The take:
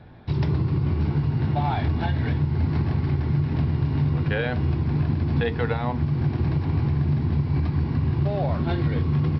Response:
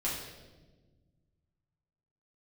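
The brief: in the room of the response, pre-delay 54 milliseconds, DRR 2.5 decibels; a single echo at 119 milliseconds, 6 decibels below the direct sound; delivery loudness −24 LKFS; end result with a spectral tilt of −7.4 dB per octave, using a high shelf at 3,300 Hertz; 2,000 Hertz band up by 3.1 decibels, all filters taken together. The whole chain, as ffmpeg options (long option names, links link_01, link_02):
-filter_complex "[0:a]equalizer=frequency=2000:width_type=o:gain=5.5,highshelf=frequency=3300:gain=-5,aecho=1:1:119:0.501,asplit=2[link_01][link_02];[1:a]atrim=start_sample=2205,adelay=54[link_03];[link_02][link_03]afir=irnorm=-1:irlink=0,volume=-8dB[link_04];[link_01][link_04]amix=inputs=2:normalize=0,volume=-4.5dB"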